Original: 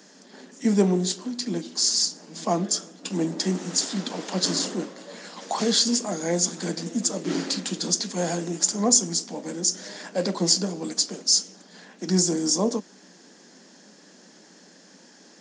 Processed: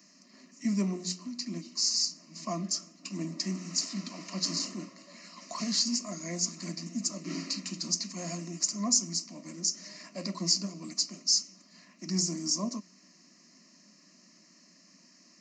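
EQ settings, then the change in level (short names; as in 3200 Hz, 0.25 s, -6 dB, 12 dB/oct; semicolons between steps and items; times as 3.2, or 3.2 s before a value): Butterworth band-stop 830 Hz, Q 2.6; notches 60/120/180 Hz; fixed phaser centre 2300 Hz, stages 8; -4.5 dB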